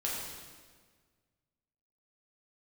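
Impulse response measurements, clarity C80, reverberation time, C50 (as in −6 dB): 2.0 dB, 1.6 s, 0.0 dB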